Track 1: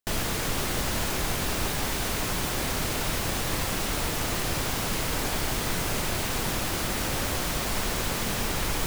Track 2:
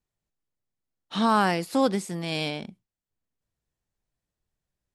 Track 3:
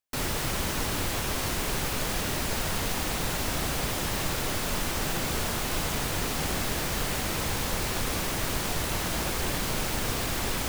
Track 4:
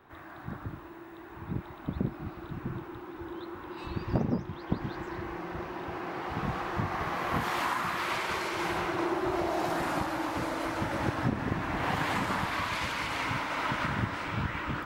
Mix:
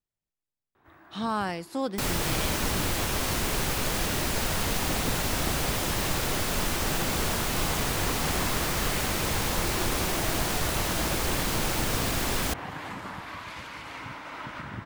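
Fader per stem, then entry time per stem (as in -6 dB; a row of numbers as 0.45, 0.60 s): off, -7.5 dB, +1.5 dB, -7.5 dB; off, 0.00 s, 1.85 s, 0.75 s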